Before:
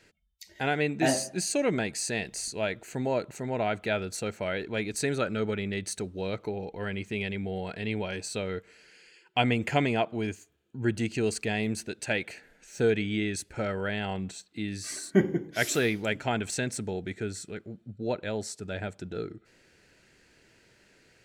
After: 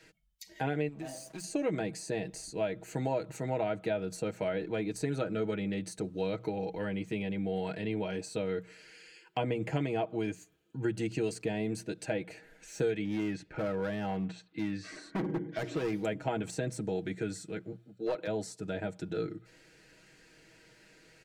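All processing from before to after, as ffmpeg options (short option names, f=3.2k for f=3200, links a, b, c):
-filter_complex "[0:a]asettb=1/sr,asplit=3[a][b][c];[a]atrim=end=0.884[d];[b]atrim=start=0.88:end=1.44,asetpts=PTS-STARTPTS,afade=t=in:d=0.004:c=qsin,afade=t=out:st=0.556:d=0.004:c=qsin,highshelf=f=4.9k:g=6.5,acompressor=threshold=-37dB:ratio=8:attack=3.2:release=140:knee=1:detection=peak,aeval=exprs='sgn(val(0))*max(abs(val(0))-0.00316,0)':c=same[e];[c]atrim=start=1.436[f];[d][e]acrossfade=d=0.004:c1=hsin:c2=qsin[g];[g][f]acrossfade=d=0.004:c1=qsin:c2=hsin,asettb=1/sr,asplit=3[h][i][j];[h]atrim=end=13.054[k];[i]atrim=start=13.05:end=15.93,asetpts=PTS-STARTPTS,afade=t=in:d=0.004:c=qsin,afade=t=out:st=2.876:d=0.004:c=qsin,lowpass=2.7k,volume=28.5dB,asoftclip=hard,volume=-28.5dB[l];[j]atrim=start=15.926[m];[k][l]acrossfade=d=0.004:c1=hsin:c2=qsin[n];[n][m]acrossfade=d=0.004:c1=qsin:c2=hsin,asettb=1/sr,asplit=3[o][p][q];[o]atrim=end=17.724[r];[p]atrim=start=17.72:end=18.27,asetpts=PTS-STARTPTS,afade=t=in:d=0.004:c=qsin,afade=t=out:st=0.546:d=0.004:c=qsin,highpass=310,aeval=exprs='clip(val(0),-1,0.0355)':c=same[s];[q]atrim=start=18.266[t];[r][s]acrossfade=d=0.004:c1=hsin:c2=qsin[u];[u][t]acrossfade=d=0.004:c1=qsin:c2=hsin,bandreject=f=60:t=h:w=6,bandreject=f=120:t=h:w=6,bandreject=f=180:t=h:w=6,aecho=1:1:6.3:0.65,acrossover=split=94|930[v][w][x];[v]acompressor=threshold=-56dB:ratio=4[y];[w]acompressor=threshold=-29dB:ratio=4[z];[x]acompressor=threshold=-45dB:ratio=4[aa];[y][z][aa]amix=inputs=3:normalize=0"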